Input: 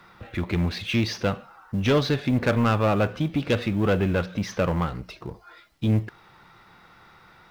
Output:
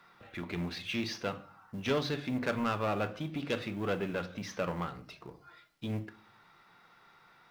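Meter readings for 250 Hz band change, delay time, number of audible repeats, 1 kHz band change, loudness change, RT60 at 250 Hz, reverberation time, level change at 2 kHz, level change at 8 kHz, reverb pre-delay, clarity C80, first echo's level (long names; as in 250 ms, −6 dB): −11.0 dB, no echo audible, no echo audible, −8.0 dB, −10.5 dB, 0.65 s, 0.40 s, −8.0 dB, −7.5 dB, 3 ms, 22.5 dB, no echo audible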